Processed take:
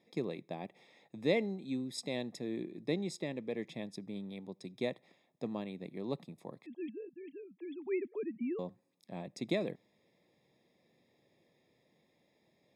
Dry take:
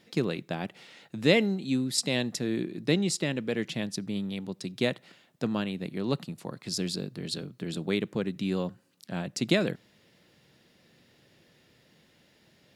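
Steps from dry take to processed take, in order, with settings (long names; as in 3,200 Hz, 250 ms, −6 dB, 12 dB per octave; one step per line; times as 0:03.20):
0:06.66–0:08.59: three sine waves on the formant tracks
moving average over 30 samples
spectral tilt +4 dB per octave
level −1 dB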